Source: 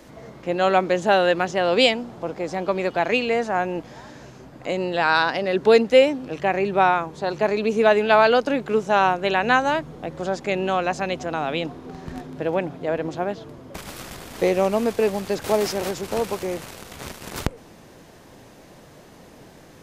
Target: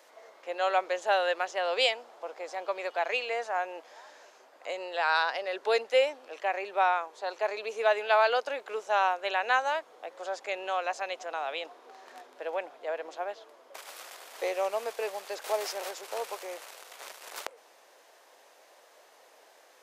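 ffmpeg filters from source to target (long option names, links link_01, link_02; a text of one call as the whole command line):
ffmpeg -i in.wav -af "highpass=frequency=520:width=0.5412,highpass=frequency=520:width=1.3066,volume=-7dB" out.wav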